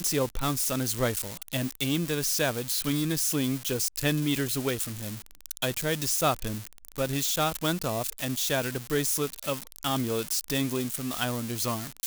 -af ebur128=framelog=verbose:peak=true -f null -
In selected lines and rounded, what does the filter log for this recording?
Integrated loudness:
  I:         -28.1 LUFS
  Threshold: -38.2 LUFS
Loudness range:
  LRA:         1.8 LU
  Threshold: -48.1 LUFS
  LRA low:   -28.9 LUFS
  LRA high:  -27.1 LUFS
True peak:
  Peak:      -12.9 dBFS